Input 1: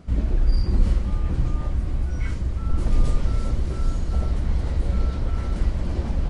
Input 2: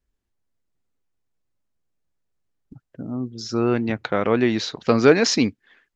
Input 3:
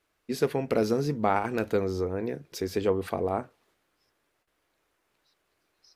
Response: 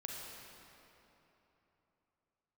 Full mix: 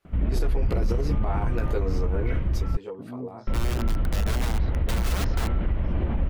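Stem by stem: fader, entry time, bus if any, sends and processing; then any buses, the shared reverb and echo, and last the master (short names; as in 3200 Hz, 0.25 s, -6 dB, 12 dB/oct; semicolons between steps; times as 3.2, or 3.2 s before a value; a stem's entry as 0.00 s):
+1.5 dB, 0.05 s, muted 2.77–3.47, no send, steep low-pass 3100 Hz 36 dB/oct
-8.5 dB, 0.00 s, no send, LPF 1600 Hz 12 dB/oct; wrapped overs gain 17.5 dB
+2.5 dB, 0.00 s, no send, bell 960 Hz +4.5 dB; limiter -15.5 dBFS, peak gain reduction 8 dB; chorus voices 6, 0.72 Hz, delay 16 ms, depth 1.6 ms; auto duck -13 dB, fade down 0.20 s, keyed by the second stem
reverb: off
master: limiter -16 dBFS, peak gain reduction 10 dB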